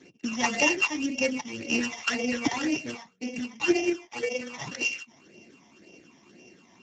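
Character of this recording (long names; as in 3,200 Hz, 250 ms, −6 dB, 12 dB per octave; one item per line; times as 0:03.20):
a buzz of ramps at a fixed pitch in blocks of 16 samples
phaser sweep stages 12, 1.9 Hz, lowest notch 450–1,400 Hz
Speex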